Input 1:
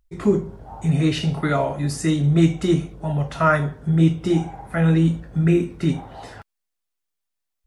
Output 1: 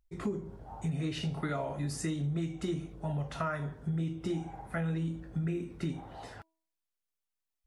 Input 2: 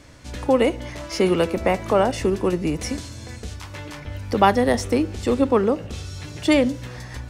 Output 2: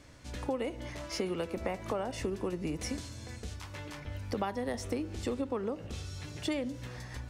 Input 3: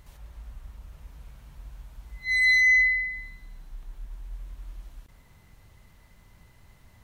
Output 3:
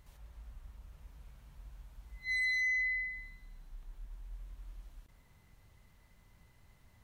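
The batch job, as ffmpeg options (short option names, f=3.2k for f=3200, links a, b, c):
-af "bandreject=f=323.9:t=h:w=4,bandreject=f=647.8:t=h:w=4,bandreject=f=971.7:t=h:w=4,acompressor=threshold=-22dB:ratio=10,volume=-8dB"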